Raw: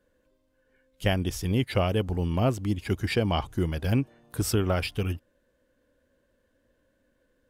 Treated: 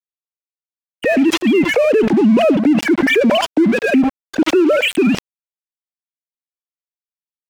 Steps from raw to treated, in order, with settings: formants replaced by sine waves; peaking EQ 1.1 kHz -12 dB 0.63 oct; delay 74 ms -22.5 dB; compression 5:1, threshold -25 dBFS, peak gain reduction 8 dB; crossover distortion -48 dBFS; loudness maximiser +25.5 dB; decay stretcher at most 51 dB/s; trim -5.5 dB

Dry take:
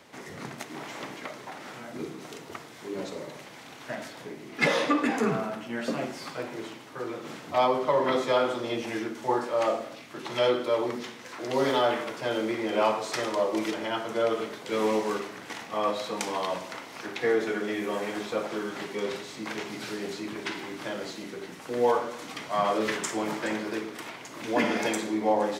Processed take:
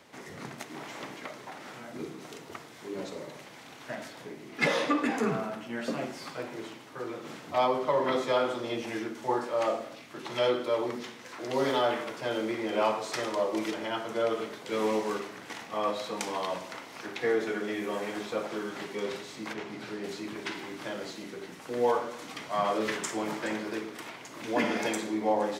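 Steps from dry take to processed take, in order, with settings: 19.53–20.04 s: treble shelf 4.1 kHz -11.5 dB; trim -2.5 dB

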